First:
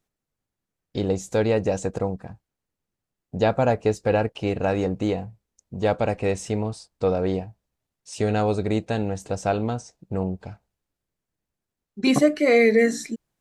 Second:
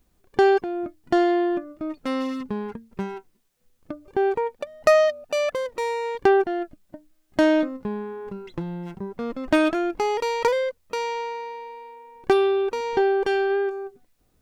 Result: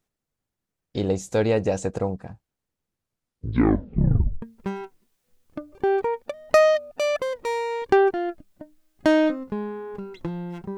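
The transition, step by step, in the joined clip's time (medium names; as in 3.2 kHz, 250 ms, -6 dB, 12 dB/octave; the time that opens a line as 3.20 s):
first
2.88 s: tape stop 1.54 s
4.42 s: go over to second from 2.75 s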